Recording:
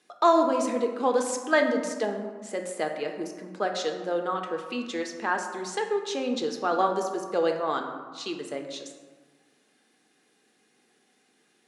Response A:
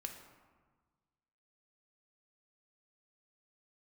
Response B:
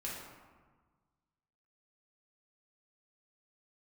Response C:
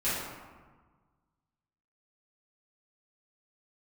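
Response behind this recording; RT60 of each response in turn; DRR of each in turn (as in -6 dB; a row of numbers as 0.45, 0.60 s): A; 1.4, 1.4, 1.4 s; 3.5, -5.5, -13.5 dB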